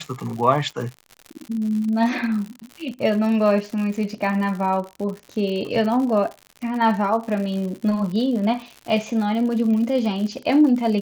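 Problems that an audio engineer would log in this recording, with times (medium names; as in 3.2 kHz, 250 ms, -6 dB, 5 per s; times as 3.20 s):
crackle 110 per s -29 dBFS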